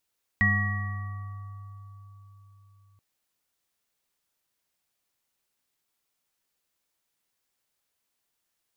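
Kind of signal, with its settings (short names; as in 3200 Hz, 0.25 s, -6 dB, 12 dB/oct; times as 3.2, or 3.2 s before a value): sine partials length 2.58 s, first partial 99.5 Hz, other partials 206/732/1140/1910 Hz, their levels -3/-17/-10.5/4.5 dB, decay 4.46 s, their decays 1.50/2.55/4.06/1.37 s, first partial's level -23.5 dB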